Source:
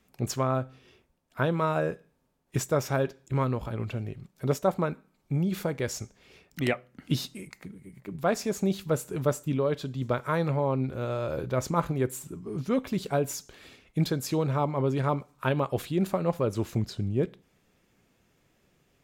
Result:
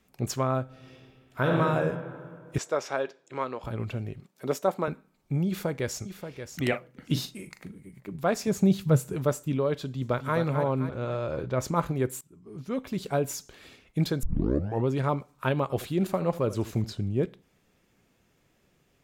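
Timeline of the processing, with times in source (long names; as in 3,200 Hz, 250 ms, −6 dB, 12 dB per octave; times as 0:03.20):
0:00.64–0:01.57: thrown reverb, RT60 2.2 s, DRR −2.5 dB
0:02.58–0:03.64: band-pass filter 420–6,300 Hz
0:04.20–0:04.88: high-pass filter 240 Hz
0:05.47–0:06.03: delay throw 580 ms, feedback 10%, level −9.5 dB
0:06.68–0:07.81: double-tracking delay 40 ms −10 dB
0:08.47–0:09.14: parametric band 130 Hz +11.5 dB 1.2 octaves
0:09.86–0:10.37: delay throw 260 ms, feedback 50%, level −7 dB
0:10.89–0:11.60: high-frequency loss of the air 62 metres
0:12.21–0:13.18: fade in, from −23.5 dB
0:14.23: tape start 0.65 s
0:15.62–0:16.96: single-tap delay 80 ms −16 dB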